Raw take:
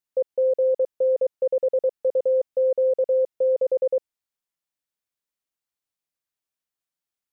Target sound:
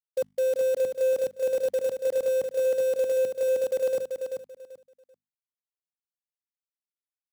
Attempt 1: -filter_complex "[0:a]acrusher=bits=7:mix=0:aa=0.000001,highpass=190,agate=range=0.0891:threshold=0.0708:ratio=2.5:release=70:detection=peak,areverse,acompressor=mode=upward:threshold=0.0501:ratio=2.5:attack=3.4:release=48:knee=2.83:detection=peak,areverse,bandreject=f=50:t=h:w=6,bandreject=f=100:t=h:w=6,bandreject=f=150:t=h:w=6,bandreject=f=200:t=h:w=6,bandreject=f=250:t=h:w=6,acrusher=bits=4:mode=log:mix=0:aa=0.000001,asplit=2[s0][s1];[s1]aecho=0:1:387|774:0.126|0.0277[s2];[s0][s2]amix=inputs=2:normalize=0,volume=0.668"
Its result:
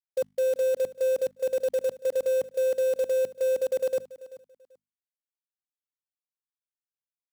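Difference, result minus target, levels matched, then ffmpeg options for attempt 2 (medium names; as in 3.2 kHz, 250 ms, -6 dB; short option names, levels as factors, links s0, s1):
echo-to-direct -12 dB
-filter_complex "[0:a]acrusher=bits=7:mix=0:aa=0.000001,highpass=190,agate=range=0.0891:threshold=0.0708:ratio=2.5:release=70:detection=peak,areverse,acompressor=mode=upward:threshold=0.0501:ratio=2.5:attack=3.4:release=48:knee=2.83:detection=peak,areverse,bandreject=f=50:t=h:w=6,bandreject=f=100:t=h:w=6,bandreject=f=150:t=h:w=6,bandreject=f=200:t=h:w=6,bandreject=f=250:t=h:w=6,acrusher=bits=4:mode=log:mix=0:aa=0.000001,asplit=2[s0][s1];[s1]aecho=0:1:387|774|1161:0.501|0.11|0.0243[s2];[s0][s2]amix=inputs=2:normalize=0,volume=0.668"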